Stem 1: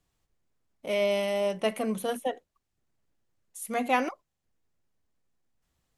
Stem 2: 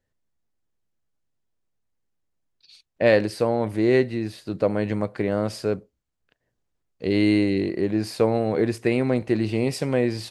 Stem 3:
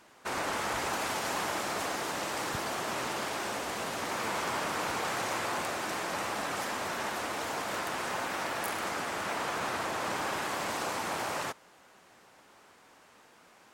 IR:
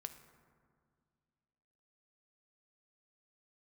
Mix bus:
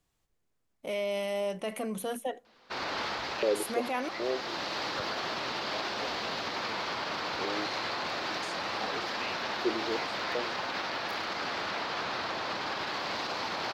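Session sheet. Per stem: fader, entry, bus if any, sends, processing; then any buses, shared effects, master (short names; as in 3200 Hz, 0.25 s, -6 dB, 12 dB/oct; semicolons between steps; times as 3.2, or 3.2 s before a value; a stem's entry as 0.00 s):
-0.5 dB, 0.00 s, bus A, send -19.5 dB, dry
-1.5 dB, 0.35 s, no bus, no send, stepped band-pass 2.6 Hz 410–6700 Hz
+1.5 dB, 2.45 s, bus A, no send, resonant high shelf 6400 Hz -14 dB, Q 3; auto duck -9 dB, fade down 0.50 s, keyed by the first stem
bus A: 0.0 dB, low shelf 160 Hz +9 dB; limiter -24.5 dBFS, peak gain reduction 11.5 dB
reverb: on, RT60 2.1 s, pre-delay 3 ms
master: low shelf 170 Hz -11.5 dB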